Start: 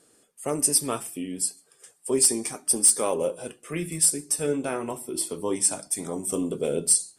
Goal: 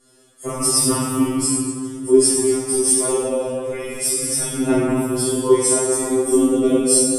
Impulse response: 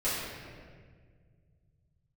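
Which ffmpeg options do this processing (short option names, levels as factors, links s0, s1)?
-filter_complex "[1:a]atrim=start_sample=2205,asetrate=29106,aresample=44100[s0];[0:a][s0]afir=irnorm=-1:irlink=0,asettb=1/sr,asplit=3[s1][s2][s3];[s1]atrim=end=2.114[s4];[s2]atrim=start=2.11:end=4.23,asetpts=PTS-STARTPTS,afade=t=in:d=0.004:c=qsin,afade=t=out:st=2.116:d=0.004:c=qsin,flanger=delay=10:depth=1.6:regen=-48:speed=1.9:shape=triangular[s5];[s3]atrim=start=4.226[s6];[s4][s5]acrossfade=d=0.004:c1=hsin:c2=qsin[s7];[s7][s6]acrossfade=d=0.004:c1=qsin:c2=hsin,afftfilt=real='re*2.45*eq(mod(b,6),0)':imag='im*2.45*eq(mod(b,6),0)':win_size=2048:overlap=0.75"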